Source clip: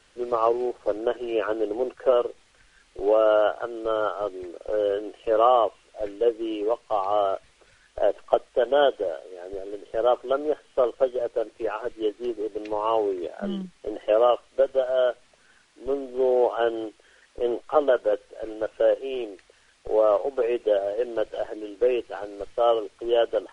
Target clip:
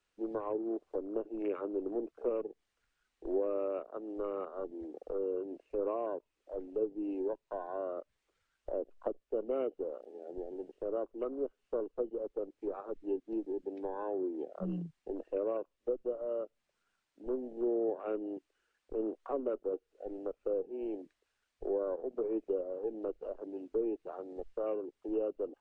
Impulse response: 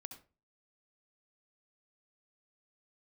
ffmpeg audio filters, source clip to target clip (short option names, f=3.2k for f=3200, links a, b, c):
-filter_complex "[0:a]afwtdn=0.0224,acrossover=split=410[a][b];[b]acompressor=threshold=-34dB:ratio=5[c];[a][c]amix=inputs=2:normalize=0,asetrate=40517,aresample=44100,volume=-6.5dB"